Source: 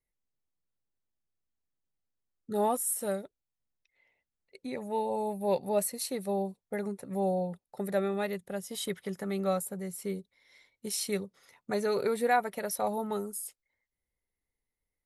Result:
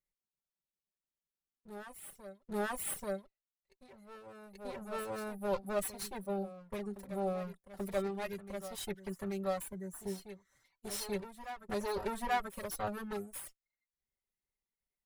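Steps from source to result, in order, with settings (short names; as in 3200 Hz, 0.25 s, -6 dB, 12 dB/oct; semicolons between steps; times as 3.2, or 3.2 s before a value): minimum comb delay 5.2 ms; spectral gain 9.79–10.64, 2000–5800 Hz -12 dB; reverb removal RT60 0.61 s; reverse echo 0.835 s -12 dB; gain -4.5 dB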